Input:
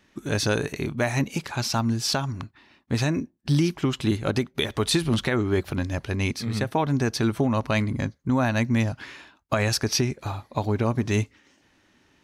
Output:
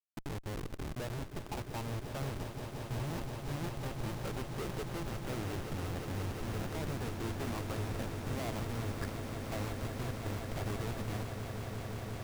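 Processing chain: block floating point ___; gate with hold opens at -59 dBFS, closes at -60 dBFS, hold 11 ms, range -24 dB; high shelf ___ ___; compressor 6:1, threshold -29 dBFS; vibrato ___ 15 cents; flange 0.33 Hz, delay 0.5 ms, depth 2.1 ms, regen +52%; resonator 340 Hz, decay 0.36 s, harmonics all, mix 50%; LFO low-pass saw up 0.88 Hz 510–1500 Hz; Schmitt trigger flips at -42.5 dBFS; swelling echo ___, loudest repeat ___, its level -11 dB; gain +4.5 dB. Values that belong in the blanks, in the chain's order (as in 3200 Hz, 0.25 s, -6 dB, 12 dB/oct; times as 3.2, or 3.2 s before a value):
7-bit, 2600 Hz, -9.5 dB, 8 Hz, 0.176 s, 8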